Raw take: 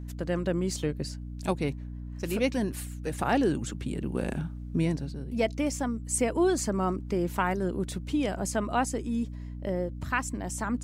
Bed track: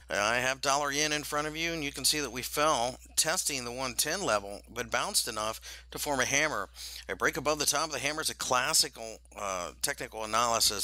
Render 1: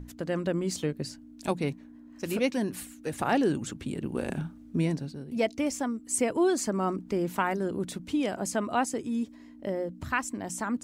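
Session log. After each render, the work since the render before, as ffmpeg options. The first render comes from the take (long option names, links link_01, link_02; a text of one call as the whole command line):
ffmpeg -i in.wav -af "bandreject=frequency=60:width_type=h:width=6,bandreject=frequency=120:width_type=h:width=6,bandreject=frequency=180:width_type=h:width=6" out.wav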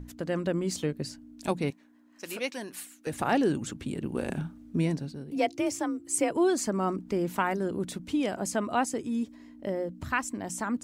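ffmpeg -i in.wav -filter_complex "[0:a]asettb=1/sr,asplit=3[link_01][link_02][link_03];[link_01]atrim=end=1.704[link_04];[link_02]atrim=start=1.7:end=3.07,asetpts=PTS-STARTPTS,afade=type=in:duration=0.004:curve=qsin,afade=type=out:start_time=1.366:duration=0.004:curve=qsin,highpass=frequency=900:poles=1[link_05];[link_03]atrim=start=3.066[link_06];[link_04][link_05]acrossfade=duration=0.004:curve1=hsin:curve2=qsin[link_07];[link_07][link_06]acrossfade=duration=0.004:curve1=qsin:curve2=hsin,asettb=1/sr,asplit=3[link_08][link_09][link_10];[link_08]atrim=end=5.304[link_11];[link_09]atrim=start=5.3:end=6.32,asetpts=PTS-STARTPTS,afade=type=in:duration=0.004:curve=qsin,afade=type=out:start_time=1.016:duration=0.004:curve=qsin,afreqshift=38[link_12];[link_10]atrim=start=6.316[link_13];[link_11][link_12]acrossfade=duration=0.004:curve1=hsin:curve2=qsin[link_14];[link_14][link_13]acrossfade=duration=0.004:curve1=qsin:curve2=hsin" out.wav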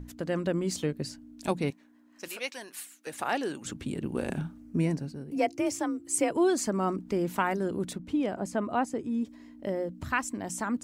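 ffmpeg -i in.wav -filter_complex "[0:a]asettb=1/sr,asplit=3[link_01][link_02][link_03];[link_01]atrim=end=2.284[link_04];[link_02]atrim=start=2.28:end=3.65,asetpts=PTS-STARTPTS,afade=type=in:duration=0.004:curve=qsin,afade=type=out:start_time=1.366:duration=0.004:curve=qsin,highpass=frequency=750:poles=1[link_05];[link_03]atrim=start=3.646[link_06];[link_04][link_05]acrossfade=duration=0.004:curve1=hsin:curve2=qsin[link_07];[link_07][link_06]acrossfade=duration=0.004:curve1=qsin:curve2=hsin,asettb=1/sr,asplit=3[link_08][link_09][link_10];[link_08]atrim=end=4.604[link_11];[link_09]atrim=start=4.6:end=5.65,asetpts=PTS-STARTPTS,afade=type=in:duration=0.004:curve=qsin,afade=type=out:start_time=1.046:duration=0.004:curve=qsin,equalizer=frequency=3600:width_type=o:width=0.43:gain=-10[link_12];[link_10]atrim=start=5.646[link_13];[link_11][link_12]acrossfade=duration=0.004:curve1=hsin:curve2=qsin[link_14];[link_14][link_13]acrossfade=duration=0.004:curve1=qsin:curve2=hsin,asettb=1/sr,asplit=3[link_15][link_16][link_17];[link_15]atrim=end=7.934[link_18];[link_16]atrim=start=7.93:end=9.25,asetpts=PTS-STARTPTS,afade=type=in:duration=0.004:curve=qsin,afade=type=out:start_time=1.316:duration=0.004:curve=qsin,highshelf=frequency=2400:gain=-11.5[link_19];[link_17]atrim=start=9.246[link_20];[link_18][link_19]acrossfade=duration=0.004:curve1=hsin:curve2=qsin[link_21];[link_21][link_20]acrossfade=duration=0.004:curve1=qsin:curve2=hsin" out.wav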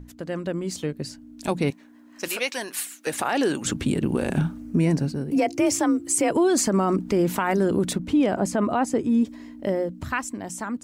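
ffmpeg -i in.wav -af "dynaudnorm=framelen=380:gausssize=9:maxgain=13dB,alimiter=limit=-13dB:level=0:latency=1:release=51" out.wav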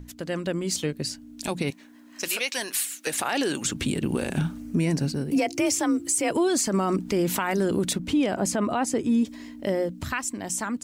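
ffmpeg -i in.wav -filter_complex "[0:a]acrossover=split=2100[link_01][link_02];[link_02]acontrast=81[link_03];[link_01][link_03]amix=inputs=2:normalize=0,alimiter=limit=-15.5dB:level=0:latency=1:release=176" out.wav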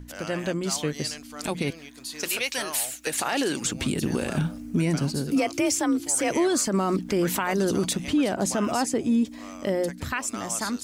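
ffmpeg -i in.wav -i bed.wav -filter_complex "[1:a]volume=-10.5dB[link_01];[0:a][link_01]amix=inputs=2:normalize=0" out.wav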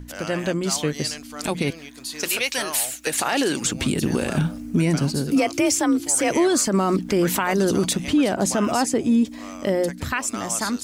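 ffmpeg -i in.wav -af "volume=4dB" out.wav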